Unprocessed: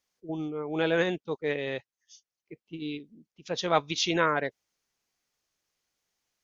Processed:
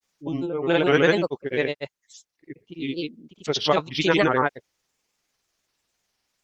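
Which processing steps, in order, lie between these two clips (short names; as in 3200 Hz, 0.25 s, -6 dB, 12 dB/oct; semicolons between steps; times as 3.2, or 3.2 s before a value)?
grains, grains 20/s, spray 0.1 s, pitch spread up and down by 3 st; gain +8 dB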